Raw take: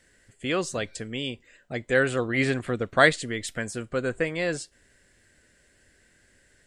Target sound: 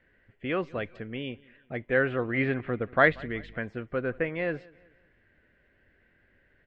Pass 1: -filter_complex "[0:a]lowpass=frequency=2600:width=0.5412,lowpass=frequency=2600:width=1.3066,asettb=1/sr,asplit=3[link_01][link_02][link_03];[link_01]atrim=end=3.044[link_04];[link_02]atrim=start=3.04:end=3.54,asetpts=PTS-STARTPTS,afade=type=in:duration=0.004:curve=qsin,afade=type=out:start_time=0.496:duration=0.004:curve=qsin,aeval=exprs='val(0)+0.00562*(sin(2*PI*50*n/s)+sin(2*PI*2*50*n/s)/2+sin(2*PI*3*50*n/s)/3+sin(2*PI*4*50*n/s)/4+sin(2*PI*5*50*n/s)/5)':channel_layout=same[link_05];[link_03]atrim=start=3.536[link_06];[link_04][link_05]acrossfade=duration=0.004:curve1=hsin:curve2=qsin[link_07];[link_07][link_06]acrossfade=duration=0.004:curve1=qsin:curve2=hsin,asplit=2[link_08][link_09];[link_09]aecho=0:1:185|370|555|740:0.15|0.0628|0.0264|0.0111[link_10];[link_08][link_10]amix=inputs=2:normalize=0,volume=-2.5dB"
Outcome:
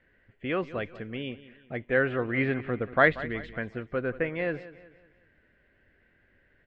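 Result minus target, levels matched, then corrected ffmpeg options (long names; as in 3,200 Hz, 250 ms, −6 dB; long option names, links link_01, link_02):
echo-to-direct +7.5 dB
-filter_complex "[0:a]lowpass=frequency=2600:width=0.5412,lowpass=frequency=2600:width=1.3066,asettb=1/sr,asplit=3[link_01][link_02][link_03];[link_01]atrim=end=3.044[link_04];[link_02]atrim=start=3.04:end=3.54,asetpts=PTS-STARTPTS,afade=type=in:duration=0.004:curve=qsin,afade=type=out:start_time=0.496:duration=0.004:curve=qsin,aeval=exprs='val(0)+0.00562*(sin(2*PI*50*n/s)+sin(2*PI*2*50*n/s)/2+sin(2*PI*3*50*n/s)/3+sin(2*PI*4*50*n/s)/4+sin(2*PI*5*50*n/s)/5)':channel_layout=same[link_05];[link_03]atrim=start=3.536[link_06];[link_04][link_05]acrossfade=duration=0.004:curve1=hsin:curve2=qsin[link_07];[link_07][link_06]acrossfade=duration=0.004:curve1=qsin:curve2=hsin,asplit=2[link_08][link_09];[link_09]aecho=0:1:185|370|555:0.0631|0.0265|0.0111[link_10];[link_08][link_10]amix=inputs=2:normalize=0,volume=-2.5dB"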